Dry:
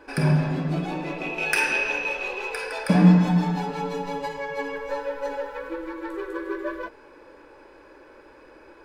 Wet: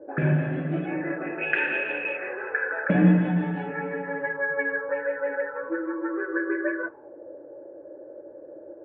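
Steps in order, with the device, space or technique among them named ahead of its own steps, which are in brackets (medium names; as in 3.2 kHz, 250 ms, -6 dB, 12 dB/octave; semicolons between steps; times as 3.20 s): envelope filter bass rig (touch-sensitive low-pass 530–3200 Hz up, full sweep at -23 dBFS; cabinet simulation 86–2100 Hz, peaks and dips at 88 Hz +5 dB, 130 Hz +6 dB, 330 Hz +10 dB, 570 Hz +7 dB, 1 kHz -8 dB, 1.7 kHz +8 dB); trim -5.5 dB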